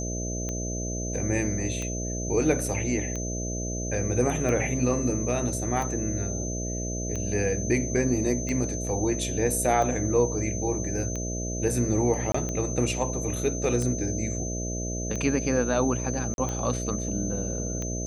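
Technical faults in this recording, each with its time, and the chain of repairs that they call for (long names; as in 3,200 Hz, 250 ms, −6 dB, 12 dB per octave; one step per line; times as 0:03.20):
mains buzz 60 Hz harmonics 11 −32 dBFS
scratch tick 45 rpm −19 dBFS
whistle 6,200 Hz −34 dBFS
0:12.32–0:12.34: drop-out 24 ms
0:16.34–0:16.38: drop-out 41 ms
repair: click removal
notch filter 6,200 Hz, Q 30
hum removal 60 Hz, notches 11
repair the gap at 0:12.32, 24 ms
repair the gap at 0:16.34, 41 ms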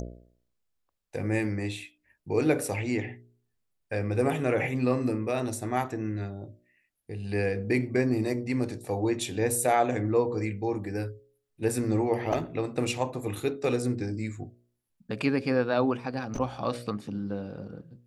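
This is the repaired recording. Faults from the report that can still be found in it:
none of them is left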